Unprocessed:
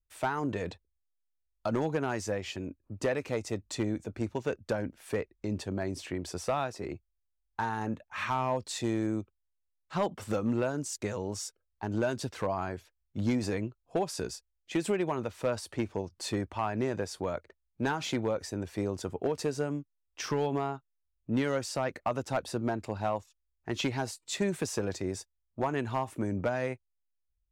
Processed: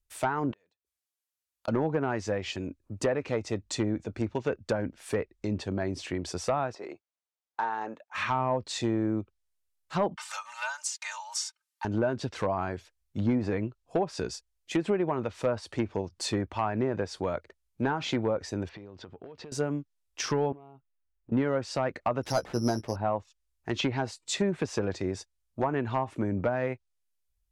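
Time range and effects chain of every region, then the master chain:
0.51–1.68 s: high-pass 550 Hz 6 dB/octave + inverted gate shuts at -36 dBFS, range -35 dB
6.75–8.15 s: band-pass 670–7400 Hz + tilt shelf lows +7 dB, about 1.1 kHz
10.16–11.85 s: elliptic high-pass 870 Hz, stop band 60 dB + treble shelf 4.2 kHz +4 dB + comb 3.3 ms, depth 99%
18.69–19.52 s: low-pass 3.9 kHz 24 dB/octave + compression 10:1, threshold -44 dBFS
20.52–21.32 s: low-pass 2.5 kHz 24 dB/octave + touch-sensitive flanger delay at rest 6.6 ms, full sweep at -30 dBFS + compression 10:1, threshold -48 dBFS
22.23–22.96 s: peaking EQ 5 kHz -12.5 dB 0.57 oct + doubling 17 ms -9 dB + careless resampling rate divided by 8×, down none, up zero stuff
whole clip: low-pass that closes with the level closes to 1.5 kHz, closed at -25.5 dBFS; treble shelf 4.6 kHz +6 dB; trim +2.5 dB

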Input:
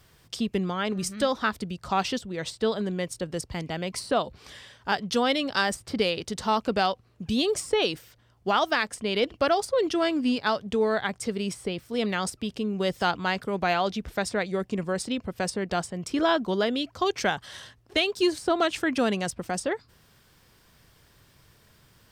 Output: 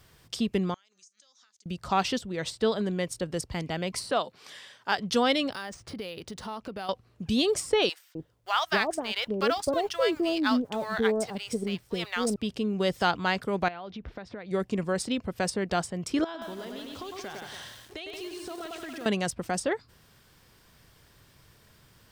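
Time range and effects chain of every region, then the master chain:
0.74–1.66 s: differentiator + compression 16:1, threshold -48 dBFS + four-pole ladder low-pass 6.9 kHz, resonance 75%
4.11–4.98 s: high-pass 130 Hz 24 dB/octave + bass shelf 360 Hz -9.5 dB
5.52–6.89 s: compression 3:1, threshold -37 dBFS + decimation joined by straight lines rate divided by 3×
7.89–12.36 s: companding laws mixed up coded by A + bands offset in time highs, lows 260 ms, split 750 Hz
13.68–14.51 s: compression 16:1, threshold -34 dBFS + distance through air 240 m
16.24–19.06 s: delay 103 ms -7 dB + compression 5:1, threshold -38 dBFS + bit-crushed delay 177 ms, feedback 35%, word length 8-bit, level -4 dB
whole clip: none

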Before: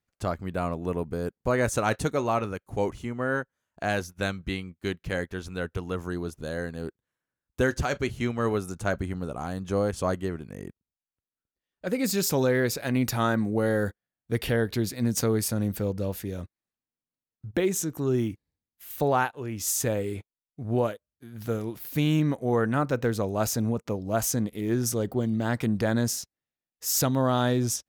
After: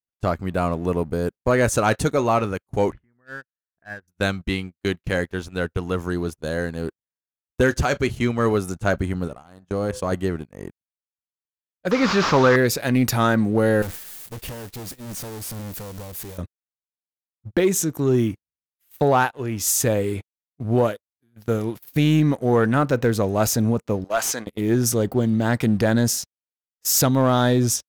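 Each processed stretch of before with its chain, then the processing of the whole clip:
2.92–4.08 s: bass shelf 300 Hz +6.5 dB + compression 2:1, threshold -32 dBFS + four-pole ladder low-pass 1.9 kHz, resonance 70%
9.28–10.12 s: de-hum 127.1 Hz, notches 16 + level held to a coarse grid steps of 10 dB
11.91–12.56 s: one-bit delta coder 32 kbps, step -31.5 dBFS + peaking EQ 1.2 kHz +14 dB 0.96 oct
13.82–16.38 s: zero-crossing glitches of -20.5 dBFS + bass shelf 270 Hz +7.5 dB + valve stage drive 35 dB, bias 0.75
24.04–24.47 s: high-pass 1.1 kHz 6 dB/octave + overdrive pedal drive 13 dB, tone 3.1 kHz, clips at -16 dBFS
whole clip: gate -37 dBFS, range -21 dB; waveshaping leveller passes 1; trim +3 dB

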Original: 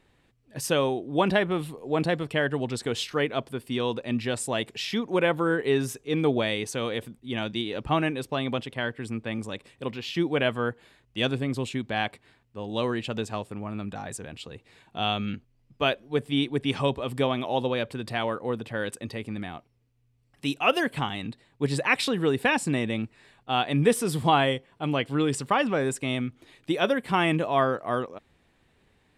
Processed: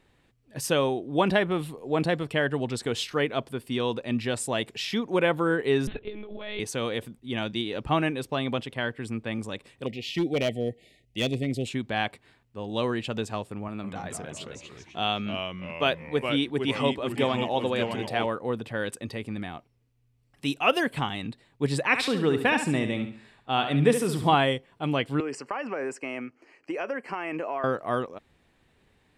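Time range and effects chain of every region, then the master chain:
5.87–6.60 s: monotone LPC vocoder at 8 kHz 210 Hz + compressor with a negative ratio -36 dBFS
9.86–11.67 s: brick-wall FIR band-stop 780–1800 Hz + hard clipper -20 dBFS
13.68–18.26 s: high-pass 150 Hz 6 dB/octave + ever faster or slower copies 155 ms, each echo -2 st, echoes 3, each echo -6 dB
21.82–24.35 s: treble shelf 5.4 kHz -4.5 dB + feedback delay 69 ms, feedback 35%, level -8.5 dB
25.20–27.64 s: three-band isolator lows -23 dB, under 270 Hz, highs -23 dB, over 6.4 kHz + compression 10:1, threshold -26 dBFS + Butterworth band-stop 3.6 kHz, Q 2
whole clip: none

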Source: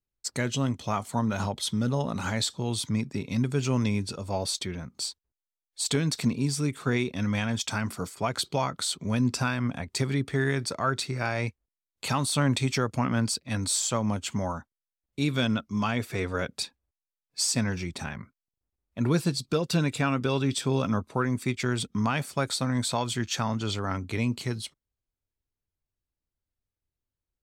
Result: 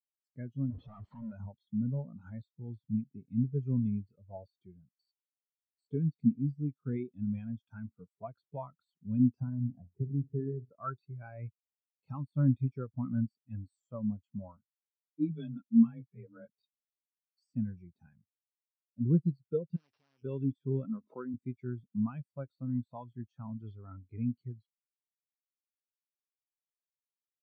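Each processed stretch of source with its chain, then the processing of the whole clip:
0.70–1.32 s: one-bit comparator + low-pass 4.1 kHz
9.40–10.70 s: low-pass 1 kHz + flutter echo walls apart 9.6 m, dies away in 0.31 s + three bands compressed up and down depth 40%
14.57–16.48 s: bass shelf 190 Hz +6.5 dB + frequency shift +22 Hz + three-phase chorus
19.76–20.23 s: sorted samples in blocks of 16 samples + Chebyshev low-pass 5.7 kHz, order 6 + spectrum-flattening compressor 10:1
20.85–21.34 s: high-pass 190 Hz + swell ahead of each attack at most 120 dB/s
whole clip: de-esser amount 85%; spectral contrast expander 2.5:1

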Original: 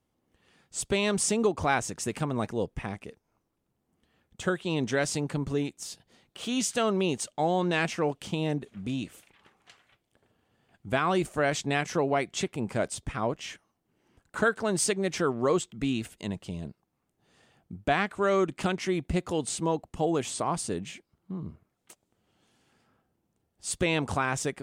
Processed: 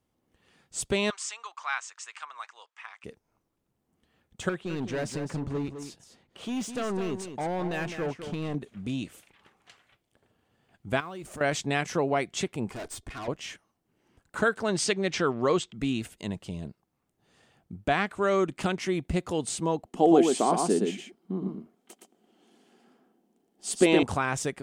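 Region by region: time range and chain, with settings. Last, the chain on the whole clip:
1.10–3.04 s: elliptic band-pass 1.1–7.7 kHz, stop band 70 dB + treble shelf 3.7 kHz -7 dB
4.49–8.55 s: hard clipper -27 dBFS + treble shelf 3.1 kHz -10 dB + delay 208 ms -9 dB
11.00–11.41 s: companding laws mixed up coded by mu + compression 4:1, threshold -39 dBFS
12.70–13.28 s: comb 2.8 ms, depth 73% + valve stage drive 35 dB, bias 0.65
14.68–15.74 s: low-pass 4.4 kHz + treble shelf 2.3 kHz +8.5 dB
19.86–24.03 s: resonant low shelf 150 Hz -13.5 dB, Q 3 + small resonant body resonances 390/720/3100 Hz, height 8 dB, ringing for 25 ms + delay 117 ms -4 dB
whole clip: none

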